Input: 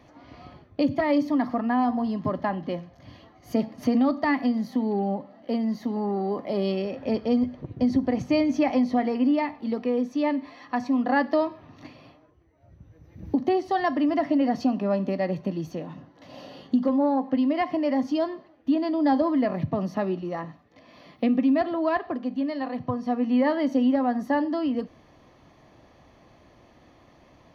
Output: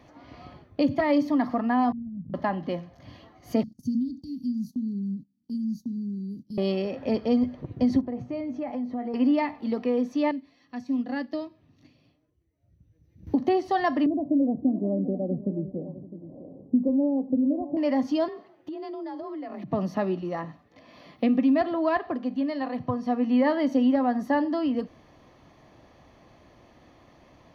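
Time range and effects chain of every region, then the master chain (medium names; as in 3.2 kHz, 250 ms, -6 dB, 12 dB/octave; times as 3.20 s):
1.92–2.34 s: inverse Chebyshev low-pass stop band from 650 Hz, stop band 60 dB + compressor with a negative ratio -35 dBFS, ratio -0.5
3.63–6.58 s: inverse Chebyshev band-stop 770–1700 Hz, stop band 80 dB + gate -46 dBFS, range -17 dB
8.01–9.14 s: low-pass 1.1 kHz 6 dB/octave + feedback comb 120 Hz, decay 0.15 s, mix 70% + compression 2.5:1, threshold -29 dBFS
10.31–13.27 s: peaking EQ 1 kHz -14 dB 2.1 oct + upward expansion, over -41 dBFS
14.06–17.77 s: inverse Chebyshev low-pass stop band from 1.8 kHz, stop band 60 dB + multi-tap echo 564/657 ms -18/-14.5 dB
18.28–19.71 s: high-pass 46 Hz + frequency shift +39 Hz + compression, threshold -34 dBFS
whole clip: none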